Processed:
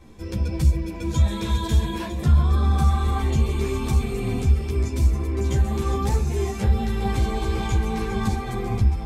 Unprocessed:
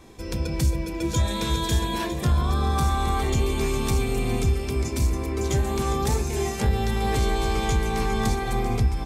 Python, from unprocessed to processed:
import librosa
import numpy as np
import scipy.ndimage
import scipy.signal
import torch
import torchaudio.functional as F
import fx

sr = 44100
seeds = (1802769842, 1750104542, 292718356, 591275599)

y = fx.bass_treble(x, sr, bass_db=6, treble_db=-3)
y = fx.ensemble(y, sr)